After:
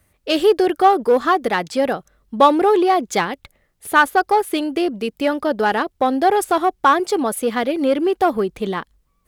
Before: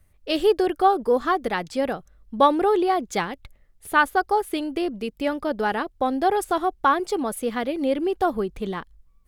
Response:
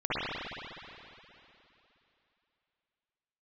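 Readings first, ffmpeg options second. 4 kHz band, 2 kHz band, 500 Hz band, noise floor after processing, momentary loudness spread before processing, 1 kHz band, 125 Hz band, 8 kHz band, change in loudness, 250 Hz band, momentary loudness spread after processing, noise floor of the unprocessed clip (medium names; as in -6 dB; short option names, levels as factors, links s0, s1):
+6.0 dB, +5.5 dB, +5.5 dB, -66 dBFS, 9 LU, +5.5 dB, +4.0 dB, +7.0 dB, +5.5 dB, +5.0 dB, 8 LU, -59 dBFS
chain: -filter_complex "[0:a]asplit=2[s0][s1];[s1]asoftclip=type=hard:threshold=0.0944,volume=0.501[s2];[s0][s2]amix=inputs=2:normalize=0,highpass=f=180:p=1,volume=1.5"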